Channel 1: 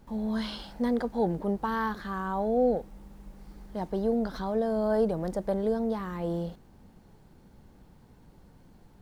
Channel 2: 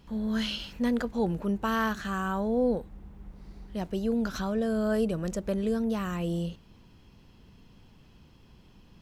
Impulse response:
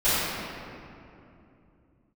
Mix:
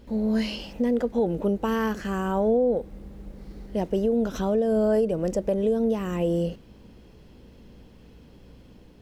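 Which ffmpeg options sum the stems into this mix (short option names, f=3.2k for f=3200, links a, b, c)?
-filter_complex "[0:a]equalizer=f=125:t=o:w=1:g=-5,equalizer=f=250:t=o:w=1:g=7,equalizer=f=500:t=o:w=1:g=11,equalizer=f=1k:t=o:w=1:g=-8,equalizer=f=2k:t=o:w=1:g=6,equalizer=f=4k:t=o:w=1:g=4,aeval=exprs='val(0)+0.00251*(sin(2*PI*60*n/s)+sin(2*PI*2*60*n/s)/2+sin(2*PI*3*60*n/s)/3+sin(2*PI*4*60*n/s)/4+sin(2*PI*5*60*n/s)/5)':c=same,volume=-2dB[a];[1:a]dynaudnorm=f=580:g=3:m=3dB,volume=-2dB[b];[a][b]amix=inputs=2:normalize=0,alimiter=limit=-15.5dB:level=0:latency=1:release=224"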